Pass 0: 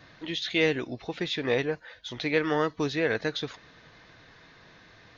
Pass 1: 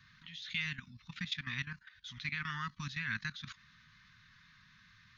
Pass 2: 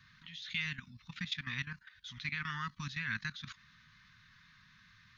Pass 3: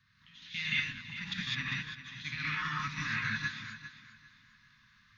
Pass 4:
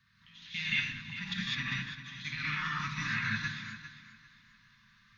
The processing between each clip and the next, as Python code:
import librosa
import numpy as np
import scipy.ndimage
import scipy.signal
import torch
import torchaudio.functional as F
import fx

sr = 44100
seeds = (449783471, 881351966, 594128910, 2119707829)

y1 = fx.level_steps(x, sr, step_db=15)
y1 = scipy.signal.sosfilt(scipy.signal.cheby2(4, 40, [320.0, 760.0], 'bandstop', fs=sr, output='sos'), y1)
y1 = F.gain(torch.from_numpy(y1), -1.5).numpy()
y2 = fx.peak_eq(y1, sr, hz=600.0, db=4.0, octaves=0.67)
y3 = fx.echo_feedback(y2, sr, ms=400, feedback_pct=38, wet_db=-8.5)
y3 = fx.rev_gated(y3, sr, seeds[0], gate_ms=230, shape='rising', drr_db=-6.0)
y3 = fx.upward_expand(y3, sr, threshold_db=-47.0, expansion=1.5)
y4 = fx.room_shoebox(y3, sr, seeds[1], volume_m3=1900.0, walls='furnished', distance_m=1.2)